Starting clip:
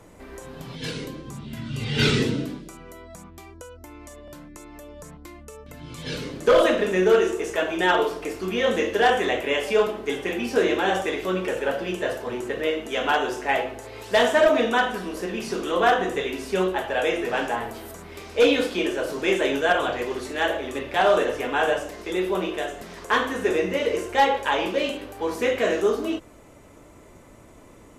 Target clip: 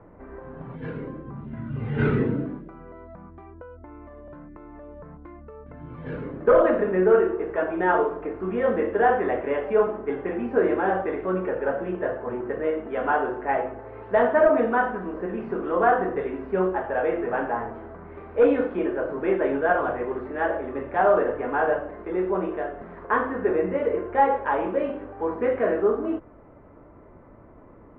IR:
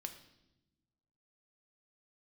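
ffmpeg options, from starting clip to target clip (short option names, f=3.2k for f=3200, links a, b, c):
-af "lowpass=f=1.6k:w=0.5412,lowpass=f=1.6k:w=1.3066"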